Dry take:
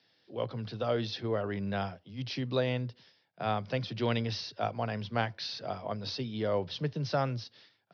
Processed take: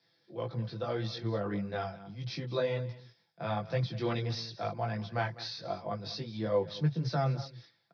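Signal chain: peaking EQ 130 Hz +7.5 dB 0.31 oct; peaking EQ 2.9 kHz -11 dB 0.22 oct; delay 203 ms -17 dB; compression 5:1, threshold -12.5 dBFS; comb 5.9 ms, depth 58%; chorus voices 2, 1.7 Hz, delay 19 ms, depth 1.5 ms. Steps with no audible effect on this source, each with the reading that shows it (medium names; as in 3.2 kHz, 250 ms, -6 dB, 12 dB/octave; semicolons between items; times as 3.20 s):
compression, threshold -12.5 dBFS: peak at its input -15.0 dBFS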